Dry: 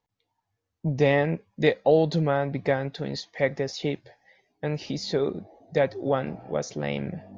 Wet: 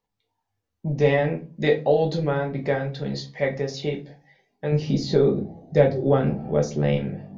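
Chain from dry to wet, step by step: 4.72–6.97 s: bass shelf 430 Hz +9.5 dB; simulated room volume 150 m³, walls furnished, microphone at 1.2 m; trim -2 dB

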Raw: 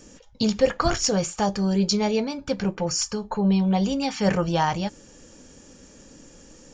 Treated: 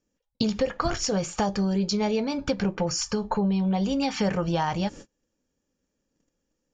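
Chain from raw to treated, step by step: gate -42 dBFS, range -35 dB; compression, threshold -28 dBFS, peak gain reduction 14 dB; distance through air 59 m; trim +6 dB

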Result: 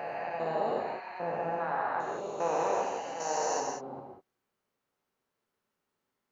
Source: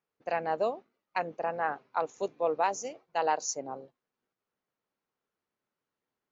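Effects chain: spectrogram pixelated in time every 400 ms; gated-style reverb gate 220 ms flat, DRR -0.5 dB; trim +3 dB

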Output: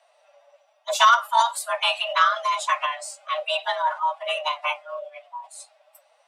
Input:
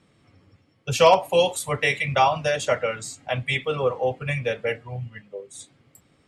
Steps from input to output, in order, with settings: formant-preserving pitch shift +4.5 st; frequency shift +450 Hz

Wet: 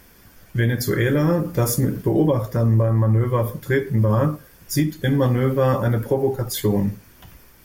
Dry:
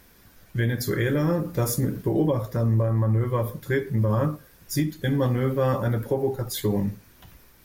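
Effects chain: band-stop 3.9 kHz, Q 10; trim +4.5 dB

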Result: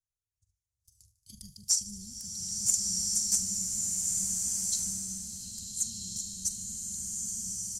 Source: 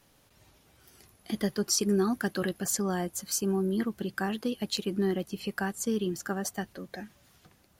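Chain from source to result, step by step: gate -56 dBFS, range -26 dB; elliptic band-stop 100–6800 Hz, stop band 80 dB; treble shelf 4 kHz +11 dB; transient shaper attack +9 dB, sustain +5 dB; in parallel at -10 dB: saturation -13 dBFS, distortion -11 dB; on the sum: distance through air 90 m; doubling 43 ms -13 dB; on a send: feedback echo behind a high-pass 75 ms, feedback 78%, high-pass 2.6 kHz, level -18 dB; on the sum: swelling reverb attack 1460 ms, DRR -3 dB; trim -3 dB

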